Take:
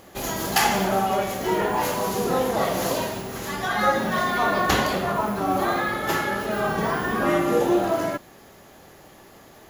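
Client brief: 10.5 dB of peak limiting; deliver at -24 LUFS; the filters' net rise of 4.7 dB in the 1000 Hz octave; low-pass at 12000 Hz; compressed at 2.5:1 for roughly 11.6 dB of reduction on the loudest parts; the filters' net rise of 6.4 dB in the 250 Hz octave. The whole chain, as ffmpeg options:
-af "lowpass=12k,equalizer=f=250:t=o:g=8.5,equalizer=f=1k:t=o:g=5.5,acompressor=threshold=-30dB:ratio=2.5,volume=8dB,alimiter=limit=-15.5dB:level=0:latency=1"

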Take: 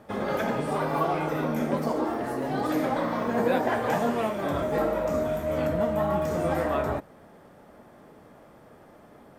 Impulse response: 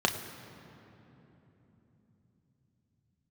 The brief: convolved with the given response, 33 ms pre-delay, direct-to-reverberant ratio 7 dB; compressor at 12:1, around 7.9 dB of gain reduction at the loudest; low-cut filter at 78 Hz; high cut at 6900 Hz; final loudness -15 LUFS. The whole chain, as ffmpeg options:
-filter_complex "[0:a]highpass=78,lowpass=6.9k,acompressor=threshold=-28dB:ratio=12,asplit=2[a][b];[1:a]atrim=start_sample=2205,adelay=33[c];[b][c]afir=irnorm=-1:irlink=0,volume=-18.5dB[d];[a][d]amix=inputs=2:normalize=0,volume=17dB"

